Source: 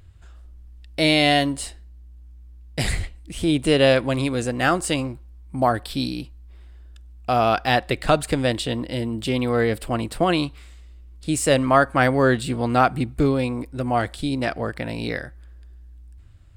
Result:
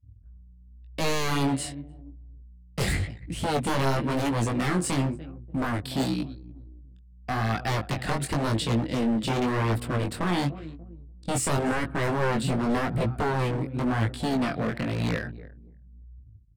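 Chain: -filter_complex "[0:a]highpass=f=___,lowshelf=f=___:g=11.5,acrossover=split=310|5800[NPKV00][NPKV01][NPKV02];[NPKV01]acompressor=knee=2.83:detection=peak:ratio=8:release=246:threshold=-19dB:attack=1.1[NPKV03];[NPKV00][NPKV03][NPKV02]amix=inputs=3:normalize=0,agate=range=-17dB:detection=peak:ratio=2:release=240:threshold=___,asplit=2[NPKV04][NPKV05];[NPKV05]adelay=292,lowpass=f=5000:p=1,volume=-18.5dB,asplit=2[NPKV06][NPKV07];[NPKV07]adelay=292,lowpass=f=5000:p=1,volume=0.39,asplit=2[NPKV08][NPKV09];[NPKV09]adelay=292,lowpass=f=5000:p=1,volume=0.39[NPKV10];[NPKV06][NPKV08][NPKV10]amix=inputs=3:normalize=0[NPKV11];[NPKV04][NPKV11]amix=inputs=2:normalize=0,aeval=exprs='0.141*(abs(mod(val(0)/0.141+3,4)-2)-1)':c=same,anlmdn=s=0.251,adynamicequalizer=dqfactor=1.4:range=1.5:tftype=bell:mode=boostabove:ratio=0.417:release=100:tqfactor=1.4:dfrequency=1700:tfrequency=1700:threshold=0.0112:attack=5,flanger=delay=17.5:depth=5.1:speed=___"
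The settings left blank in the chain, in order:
100, 250, -39dB, 0.92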